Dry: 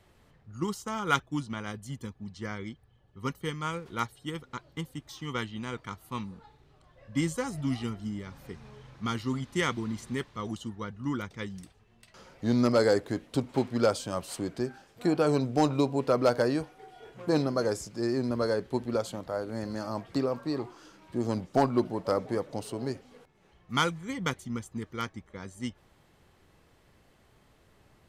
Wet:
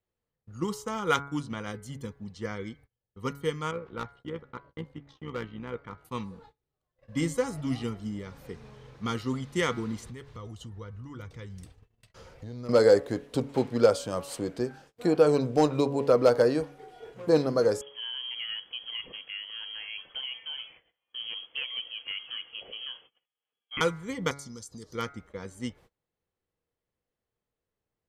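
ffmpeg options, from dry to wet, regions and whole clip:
-filter_complex "[0:a]asettb=1/sr,asplit=3[a][b][c];[a]atrim=end=3.714[d];[b]atrim=start=3.71:end=6.05,asetpts=PTS-STARTPTS,afade=t=in:d=0.004:c=qsin,afade=t=out:st=2.336:d=0.004:c=qsin,lowpass=2.4k,volume=27dB,asoftclip=hard,volume=-27dB,tremolo=f=63:d=0.621[e];[c]atrim=start=6.046[f];[d][e]acrossfade=d=0.004:c1=hsin:c2=qsin[g];[g][f]acrossfade=d=0.004:c1=qsin:c2=hsin,asettb=1/sr,asplit=3[h][i][j];[h]atrim=end=10.054[k];[i]atrim=start=10.05:end=12.69,asetpts=PTS-STARTPTS,afade=t=in:d=0.004:c=qsin,afade=t=out:st=2.636:d=0.004:c=qsin,lowshelf=f=140:t=q:w=1.5:g=8,acompressor=threshold=-39dB:ratio=5:attack=3.2:release=140:knee=1:detection=peak[l];[j]atrim=start=12.686[m];[k][l]acrossfade=d=0.004:c1=hsin:c2=qsin[n];[n][m]acrossfade=d=0.004:c1=qsin:c2=hsin,asettb=1/sr,asplit=3[o][p][q];[o]atrim=end=17.814[r];[p]atrim=start=17.81:end=23.81,asetpts=PTS-STARTPTS,afade=t=in:d=0.004:c=qsin,afade=t=out:st=5.996:d=0.004:c=qsin,lowpass=f=2.9k:t=q:w=0.5098,lowpass=f=2.9k:t=q:w=0.6013,lowpass=f=2.9k:t=q:w=0.9,lowpass=f=2.9k:t=q:w=2.563,afreqshift=-3400,acompressor=threshold=-30dB:ratio=2:attack=3.2:release=140:knee=1:detection=peak,tiltshelf=f=1.4k:g=7.5[s];[q]atrim=start=23.806[t];[r][s]acrossfade=d=0.004:c1=hsin:c2=qsin[u];[u][t]acrossfade=d=0.004:c1=qsin:c2=hsin,asettb=1/sr,asplit=3[v][w][x];[v]atrim=end=24.314[y];[w]atrim=start=24.31:end=24.95,asetpts=PTS-STARTPTS,afade=t=in:d=0.004:c=qsin,afade=t=out:st=0.636:d=0.004:c=qsin,lowpass=12k,highshelf=f=3.5k:t=q:w=3:g=12,acompressor=threshold=-41dB:ratio=5:attack=3.2:release=140:knee=1:detection=peak[z];[x]atrim=start=24.946[aa];[y][z]acrossfade=d=0.004:c1=hsin:c2=qsin[ab];[ab][aa]acrossfade=d=0.004:c1=qsin:c2=hsin,bandreject=f=140.7:t=h:w=4,bandreject=f=281.4:t=h:w=4,bandreject=f=422.1:t=h:w=4,bandreject=f=562.8:t=h:w=4,bandreject=f=703.5:t=h:w=4,bandreject=f=844.2:t=h:w=4,bandreject=f=984.9:t=h:w=4,bandreject=f=1.1256k:t=h:w=4,bandreject=f=1.2663k:t=h:w=4,bandreject=f=1.407k:t=h:w=4,bandreject=f=1.5477k:t=h:w=4,bandreject=f=1.6884k:t=h:w=4,bandreject=f=1.8291k:t=h:w=4,bandreject=f=1.9698k:t=h:w=4,bandreject=f=2.1105k:t=h:w=4,bandreject=f=2.2512k:t=h:w=4,agate=range=-27dB:threshold=-53dB:ratio=16:detection=peak,equalizer=f=480:w=5.1:g=8.5"

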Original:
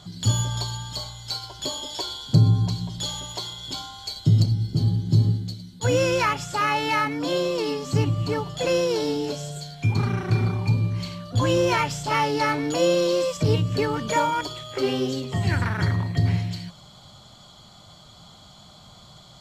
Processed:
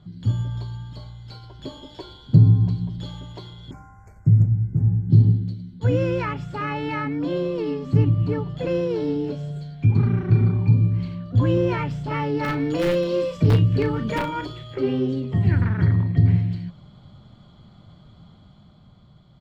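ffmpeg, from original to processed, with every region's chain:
-filter_complex "[0:a]asettb=1/sr,asplit=3[a][b][c];[a]atrim=end=3.714[d];[b]atrim=start=3.71:end=5.1,asetpts=PTS-STARTPTS,afade=t=in:d=0.004:c=qsin,afade=t=out:st=1.386:d=0.004:c=qsin,asuperstop=centerf=3600:order=8:qfactor=0.91,equalizer=f=300:t=o:w=1.7:g=-8[e];[c]atrim=start=5.096[f];[d][e]acrossfade=d=0.004:c1=hsin:c2=qsin[g];[g][f]acrossfade=d=0.004:c1=qsin:c2=hsin,asettb=1/sr,asplit=3[h][i][j];[h]atrim=end=12.434[k];[i]atrim=start=12.43:end=14.75,asetpts=PTS-STARTPTS,afade=t=in:d=0.004:c=qsin,afade=t=out:st=2.316:d=0.004:c=qsin,highshelf=f=2.2k:g=6.5,aeval=exprs='(mod(3.55*val(0)+1,2)-1)/3.55':c=same,asplit=2[l][m];[m]adelay=36,volume=-9dB[n];[l][n]amix=inputs=2:normalize=0,atrim=end_sample=102312[o];[j]atrim=start=14.746[p];[k][o]acrossfade=d=0.004:c1=hsin:c2=qsin[q];[q][p]acrossfade=d=0.004:c1=qsin:c2=hsin,firequalizer=gain_entry='entry(220,0);entry(710,-12);entry(1800,-10);entry(6400,-28)':delay=0.05:min_phase=1,dynaudnorm=f=110:g=21:m=5dB"

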